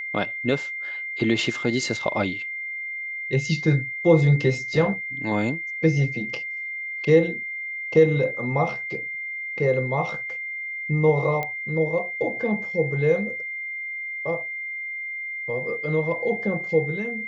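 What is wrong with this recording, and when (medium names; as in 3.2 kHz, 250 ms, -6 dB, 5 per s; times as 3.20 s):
whine 2.1 kHz -29 dBFS
11.43 s: pop -15 dBFS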